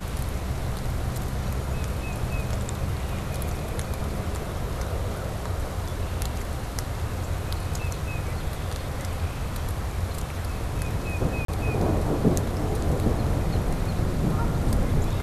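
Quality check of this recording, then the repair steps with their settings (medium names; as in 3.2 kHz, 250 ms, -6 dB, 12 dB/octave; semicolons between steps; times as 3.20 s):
11.45–11.48 s: dropout 33 ms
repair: interpolate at 11.45 s, 33 ms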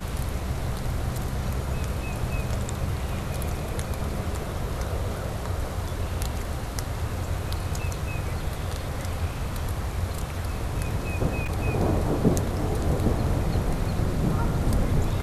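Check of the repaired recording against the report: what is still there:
nothing left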